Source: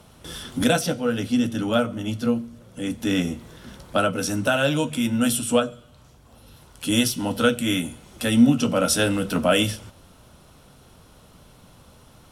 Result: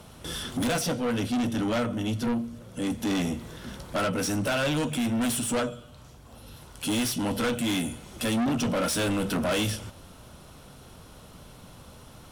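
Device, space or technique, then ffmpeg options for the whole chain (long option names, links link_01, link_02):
saturation between pre-emphasis and de-emphasis: -af "highshelf=frequency=9700:gain=8,asoftclip=type=tanh:threshold=-26dB,highshelf=frequency=9700:gain=-8,volume=2.5dB"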